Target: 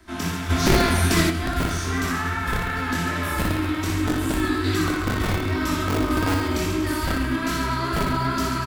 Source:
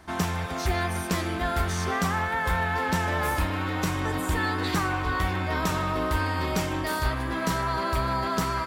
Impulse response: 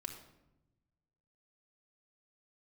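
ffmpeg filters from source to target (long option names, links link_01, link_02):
-filter_complex "[1:a]atrim=start_sample=2205,atrim=end_sample=4410[link_01];[0:a][link_01]afir=irnorm=-1:irlink=0,flanger=delay=18.5:depth=6.1:speed=2.5,acrossover=split=160|1100|3900[link_02][link_03][link_04][link_05];[link_02]aeval=exprs='(mod(25.1*val(0)+1,2)-1)/25.1':channel_layout=same[link_06];[link_03]bandpass=frequency=270:width_type=q:width=1.2:csg=0[link_07];[link_06][link_07][link_04][link_05]amix=inputs=4:normalize=0,aecho=1:1:60|138|239.4|371.2|542.6:0.631|0.398|0.251|0.158|0.1,asplit=3[link_08][link_09][link_10];[link_08]afade=type=out:start_time=0.49:duration=0.02[link_11];[link_09]acontrast=81,afade=type=in:start_time=0.49:duration=0.02,afade=type=out:start_time=1.29:duration=0.02[link_12];[link_10]afade=type=in:start_time=1.29:duration=0.02[link_13];[link_11][link_12][link_13]amix=inputs=3:normalize=0,volume=7.5dB"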